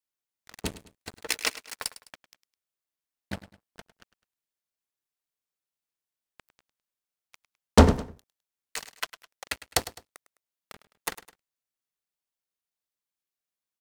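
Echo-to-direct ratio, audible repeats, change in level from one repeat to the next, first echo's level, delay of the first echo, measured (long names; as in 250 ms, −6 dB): −15.0 dB, 2, −8.0 dB, −15.5 dB, 104 ms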